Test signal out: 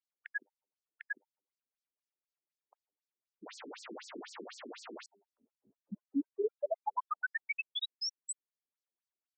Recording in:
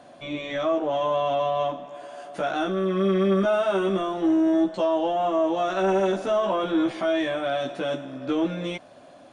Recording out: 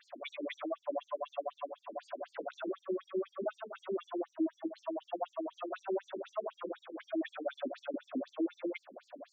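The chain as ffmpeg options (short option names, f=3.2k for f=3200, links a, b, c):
-af "acompressor=threshold=-32dB:ratio=6,highshelf=f=2.7k:g=-8.5,bandreject=f=100:t=h:w=4,bandreject=f=200:t=h:w=4,bandreject=f=300:t=h:w=4,bandreject=f=400:t=h:w=4,bandreject=f=500:t=h:w=4,bandreject=f=600:t=h:w=4,bandreject=f=700:t=h:w=4,bandreject=f=800:t=h:w=4,bandreject=f=900:t=h:w=4,alimiter=level_in=5dB:limit=-24dB:level=0:latency=1:release=184,volume=-5dB,afftfilt=real='re*between(b*sr/1024,290*pow(6200/290,0.5+0.5*sin(2*PI*4*pts/sr))/1.41,290*pow(6200/290,0.5+0.5*sin(2*PI*4*pts/sr))*1.41)':imag='im*between(b*sr/1024,290*pow(6200/290,0.5+0.5*sin(2*PI*4*pts/sr))/1.41,290*pow(6200/290,0.5+0.5*sin(2*PI*4*pts/sr))*1.41)':win_size=1024:overlap=0.75,volume=6dB"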